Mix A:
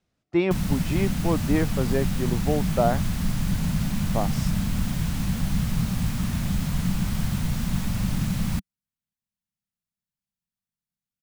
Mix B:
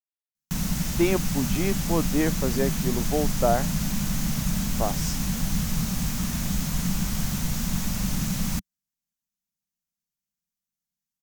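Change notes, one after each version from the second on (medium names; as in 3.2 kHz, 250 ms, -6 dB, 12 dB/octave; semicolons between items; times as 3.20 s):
speech: entry +0.65 s; master: add fifteen-band graphic EQ 100 Hz -10 dB, 6.3 kHz +8 dB, 16 kHz +9 dB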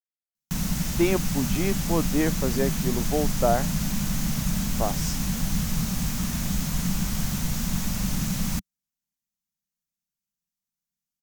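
no change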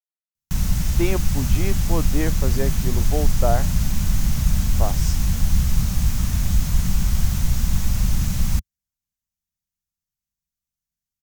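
master: add resonant low shelf 130 Hz +10.5 dB, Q 1.5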